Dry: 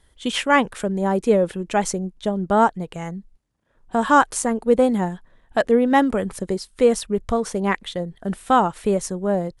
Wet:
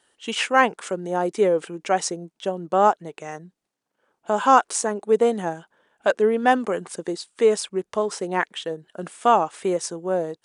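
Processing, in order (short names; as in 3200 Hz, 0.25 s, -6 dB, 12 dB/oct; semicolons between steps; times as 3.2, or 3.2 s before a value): HPF 370 Hz 12 dB/oct; speed mistake 48 kHz file played as 44.1 kHz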